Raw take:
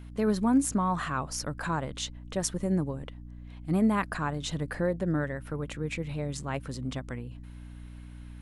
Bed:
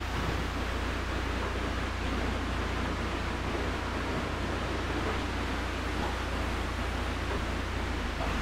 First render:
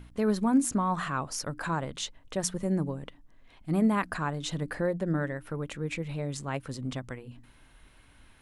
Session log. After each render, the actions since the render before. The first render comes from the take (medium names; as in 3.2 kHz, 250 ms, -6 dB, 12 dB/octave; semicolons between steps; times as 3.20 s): de-hum 60 Hz, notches 5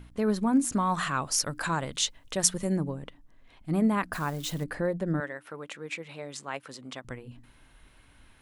0.72–2.77 s: treble shelf 2.1 kHz +9.5 dB; 4.13–4.64 s: zero-crossing glitches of -35.5 dBFS; 5.20–7.05 s: frequency weighting A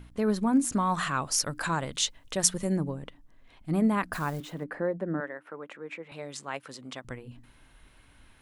4.40–6.12 s: three-band isolator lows -19 dB, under 170 Hz, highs -15 dB, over 2.3 kHz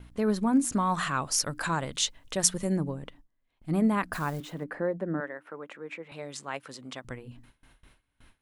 gate with hold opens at -45 dBFS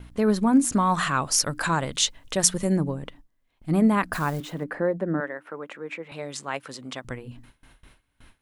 trim +5 dB; peak limiter -1 dBFS, peak gain reduction 2 dB